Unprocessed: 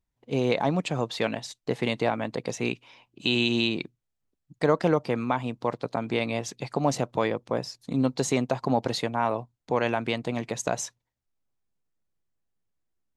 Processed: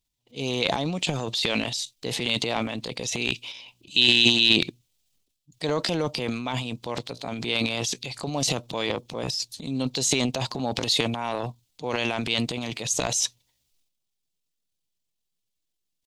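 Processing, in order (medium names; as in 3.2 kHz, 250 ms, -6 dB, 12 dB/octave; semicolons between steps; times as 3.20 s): tempo 0.82×; resonant high shelf 2.3 kHz +11.5 dB, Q 1.5; transient shaper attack -2 dB, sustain +12 dB; trim -4 dB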